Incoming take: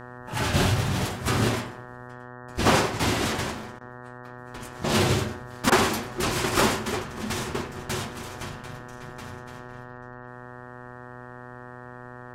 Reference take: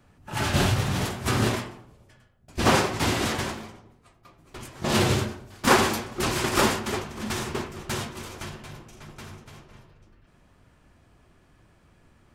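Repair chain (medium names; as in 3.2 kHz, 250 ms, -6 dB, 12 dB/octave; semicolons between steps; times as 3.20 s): de-hum 123.5 Hz, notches 15; interpolate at 3.79/5.70 s, 18 ms; inverse comb 96 ms -20 dB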